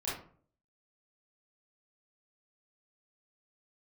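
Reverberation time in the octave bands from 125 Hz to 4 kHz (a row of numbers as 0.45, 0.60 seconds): 0.65, 0.60, 0.55, 0.45, 0.35, 0.25 seconds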